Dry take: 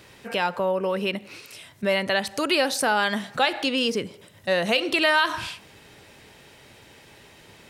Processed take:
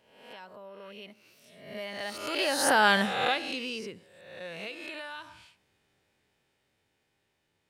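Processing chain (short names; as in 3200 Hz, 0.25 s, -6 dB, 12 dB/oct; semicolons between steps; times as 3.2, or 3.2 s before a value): spectral swells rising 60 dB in 0.89 s; Doppler pass-by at 2.88, 15 m/s, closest 2.3 m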